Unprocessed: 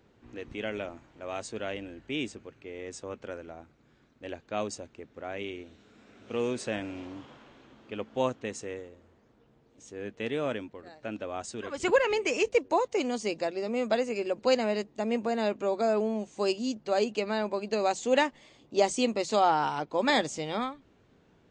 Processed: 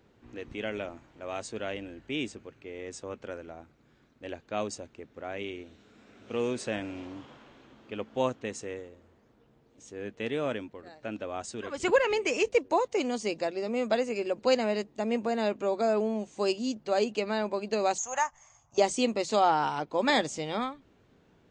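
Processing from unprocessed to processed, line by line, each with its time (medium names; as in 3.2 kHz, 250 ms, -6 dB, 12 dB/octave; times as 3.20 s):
17.98–18.78 s: FFT filter 110 Hz 0 dB, 240 Hz -24 dB, 410 Hz -28 dB, 720 Hz 0 dB, 1.2 kHz +3 dB, 4.2 kHz -19 dB, 6.5 kHz +13 dB, 11 kHz -30 dB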